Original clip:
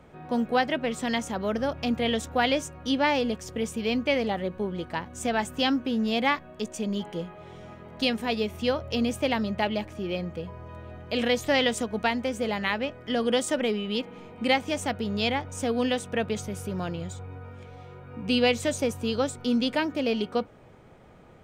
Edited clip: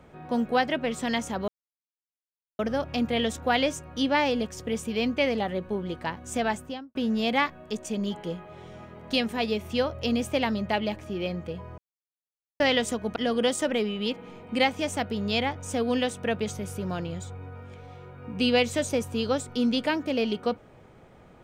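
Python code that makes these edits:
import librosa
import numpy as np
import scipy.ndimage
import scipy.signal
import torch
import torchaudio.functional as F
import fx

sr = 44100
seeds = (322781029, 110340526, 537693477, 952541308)

y = fx.studio_fade_out(x, sr, start_s=5.33, length_s=0.51)
y = fx.edit(y, sr, fx.insert_silence(at_s=1.48, length_s=1.11),
    fx.silence(start_s=10.67, length_s=0.82),
    fx.cut(start_s=12.05, length_s=1.0), tone=tone)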